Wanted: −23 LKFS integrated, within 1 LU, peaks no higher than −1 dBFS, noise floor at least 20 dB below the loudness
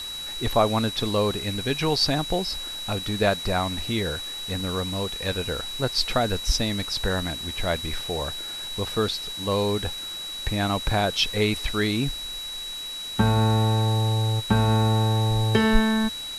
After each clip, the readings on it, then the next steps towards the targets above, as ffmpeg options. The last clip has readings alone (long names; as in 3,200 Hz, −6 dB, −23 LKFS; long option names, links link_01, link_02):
interfering tone 3,900 Hz; level of the tone −32 dBFS; background noise floor −34 dBFS; target noise floor −45 dBFS; integrated loudness −24.5 LKFS; sample peak −4.5 dBFS; target loudness −23.0 LKFS
→ -af "bandreject=frequency=3900:width=30"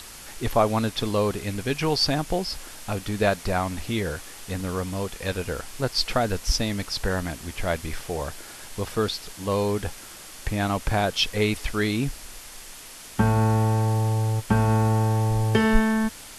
interfering tone none found; background noise floor −43 dBFS; target noise floor −46 dBFS
→ -af "afftdn=noise_reduction=6:noise_floor=-43"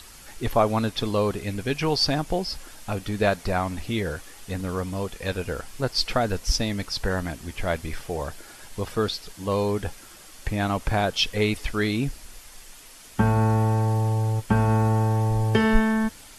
background noise floor −46 dBFS; integrated loudness −25.5 LKFS; sample peak −5.0 dBFS; target loudness −23.0 LKFS
→ -af "volume=2.5dB"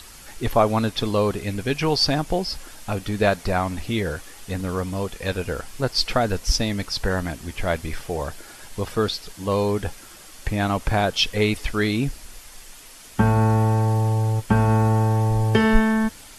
integrated loudness −23.0 LKFS; sample peak −2.5 dBFS; background noise floor −44 dBFS